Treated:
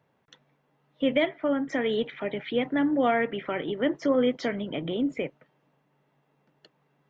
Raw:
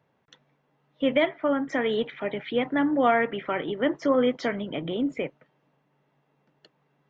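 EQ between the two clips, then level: dynamic bell 1.1 kHz, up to -6 dB, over -38 dBFS, Q 1.1; 0.0 dB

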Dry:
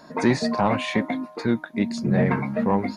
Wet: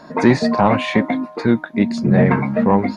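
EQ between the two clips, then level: low-pass 3.4 kHz 6 dB/octave; +7.0 dB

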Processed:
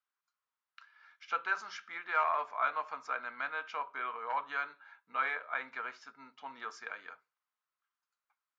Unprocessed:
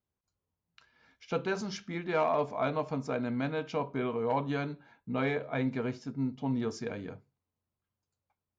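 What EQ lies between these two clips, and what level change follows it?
dynamic bell 4.3 kHz, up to -5 dB, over -50 dBFS, Q 0.84; resonant high-pass 1.3 kHz, resonance Q 2.8; distance through air 78 m; 0.0 dB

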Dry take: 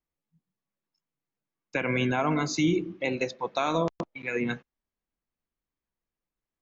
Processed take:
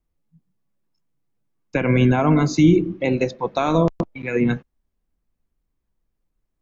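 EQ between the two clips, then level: tilt EQ -3 dB/octave; treble shelf 5.7 kHz +8.5 dB; +5.0 dB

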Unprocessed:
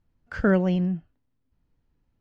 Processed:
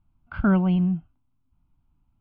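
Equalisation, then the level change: low-pass 2.3 kHz 12 dB/octave; static phaser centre 1.8 kHz, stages 6; +4.5 dB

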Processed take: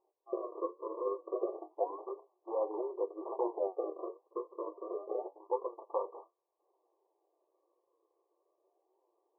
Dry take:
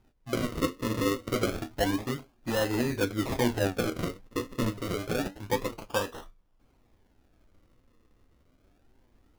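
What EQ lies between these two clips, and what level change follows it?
brick-wall FIR band-pass 330–1200 Hz; -4.0 dB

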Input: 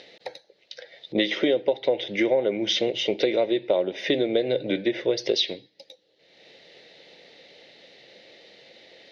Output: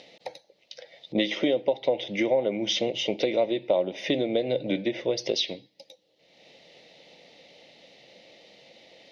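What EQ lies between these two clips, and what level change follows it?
fifteen-band graphic EQ 100 Hz -4 dB, 400 Hz -8 dB, 1.6 kHz -12 dB, 4 kHz -6 dB; +2.5 dB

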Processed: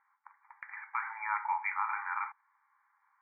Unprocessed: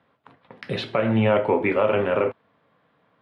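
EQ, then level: brick-wall FIR band-pass 790–2400 Hz; distance through air 360 m; -2.0 dB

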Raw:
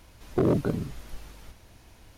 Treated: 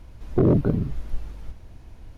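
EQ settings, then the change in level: tilt EQ -2.5 dB/octave; dynamic bell 7.6 kHz, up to -6 dB, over -59 dBFS, Q 1; 0.0 dB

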